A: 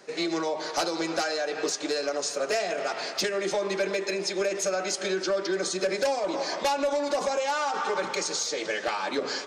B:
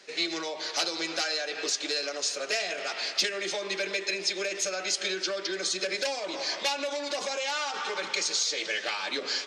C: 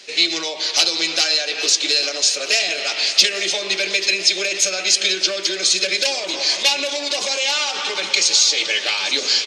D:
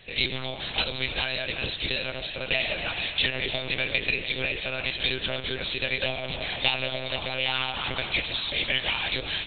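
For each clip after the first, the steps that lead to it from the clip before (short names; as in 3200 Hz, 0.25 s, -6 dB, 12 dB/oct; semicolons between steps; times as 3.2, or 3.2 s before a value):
weighting filter D; gain -6.5 dB
resonant high shelf 2100 Hz +6.5 dB, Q 1.5; feedback echo 0.838 s, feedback 51%, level -14 dB; gain +6 dB
monotone LPC vocoder at 8 kHz 130 Hz; gain -5.5 dB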